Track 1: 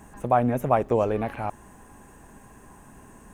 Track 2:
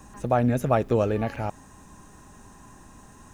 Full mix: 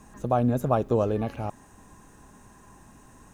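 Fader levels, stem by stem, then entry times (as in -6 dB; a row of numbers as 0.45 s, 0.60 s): -7.0 dB, -5.0 dB; 0.00 s, 0.00 s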